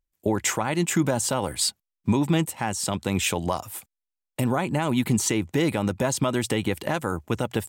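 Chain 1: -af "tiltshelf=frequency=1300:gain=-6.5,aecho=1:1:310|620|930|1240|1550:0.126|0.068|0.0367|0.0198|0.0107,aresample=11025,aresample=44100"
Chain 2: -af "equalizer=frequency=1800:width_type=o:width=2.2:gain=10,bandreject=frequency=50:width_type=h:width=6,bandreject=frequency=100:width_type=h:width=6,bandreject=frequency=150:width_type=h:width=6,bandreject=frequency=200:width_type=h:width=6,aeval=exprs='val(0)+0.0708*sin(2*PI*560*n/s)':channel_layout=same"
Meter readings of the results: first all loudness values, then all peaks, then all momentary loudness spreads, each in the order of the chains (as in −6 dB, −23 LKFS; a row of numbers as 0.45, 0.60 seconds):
−28.0, −21.0 LKFS; −10.0, −3.5 dBFS; 8, 4 LU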